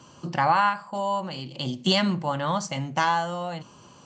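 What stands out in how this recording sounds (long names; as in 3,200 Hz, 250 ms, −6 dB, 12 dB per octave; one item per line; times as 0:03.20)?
background noise floor −51 dBFS
spectral slope −3.0 dB per octave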